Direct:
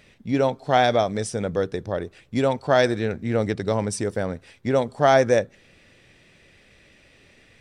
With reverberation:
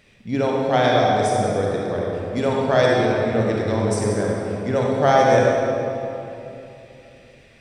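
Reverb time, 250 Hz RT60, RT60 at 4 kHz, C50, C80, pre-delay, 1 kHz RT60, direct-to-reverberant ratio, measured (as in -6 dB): 3.0 s, 3.3 s, 1.9 s, -2.0 dB, 0.0 dB, 36 ms, 2.8 s, -3.0 dB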